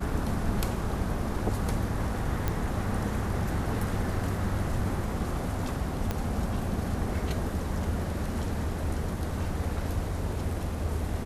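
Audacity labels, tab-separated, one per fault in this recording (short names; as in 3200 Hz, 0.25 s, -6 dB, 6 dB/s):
2.480000	2.480000	pop -14 dBFS
6.110000	6.110000	pop -16 dBFS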